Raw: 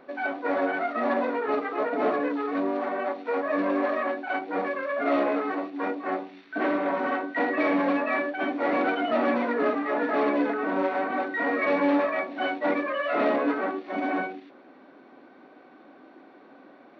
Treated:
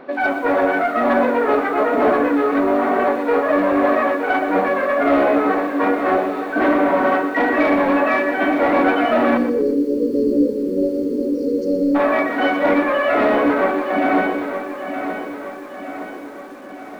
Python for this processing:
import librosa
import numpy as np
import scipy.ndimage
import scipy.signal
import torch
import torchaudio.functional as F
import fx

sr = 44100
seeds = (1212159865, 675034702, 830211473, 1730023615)

p1 = fx.rider(x, sr, range_db=10, speed_s=0.5)
p2 = x + (p1 * librosa.db_to_amplitude(-3.0))
p3 = 10.0 ** (-13.5 / 20.0) * np.tanh(p2 / 10.0 ** (-13.5 / 20.0))
p4 = p3 + fx.echo_feedback(p3, sr, ms=919, feedback_pct=53, wet_db=-9, dry=0)
p5 = fx.spec_erase(p4, sr, start_s=9.37, length_s=2.58, low_hz=570.0, high_hz=4200.0)
p6 = fx.high_shelf(p5, sr, hz=3800.0, db=-7.0)
p7 = fx.echo_crushed(p6, sr, ms=121, feedback_pct=35, bits=8, wet_db=-10.0)
y = p7 * librosa.db_to_amplitude(5.5)